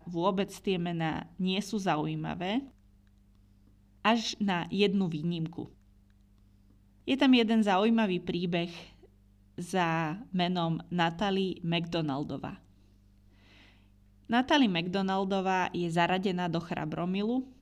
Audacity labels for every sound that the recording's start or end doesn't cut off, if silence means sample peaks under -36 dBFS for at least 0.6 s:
4.050000	5.650000	sound
7.080000	8.800000	sound
9.580000	12.530000	sound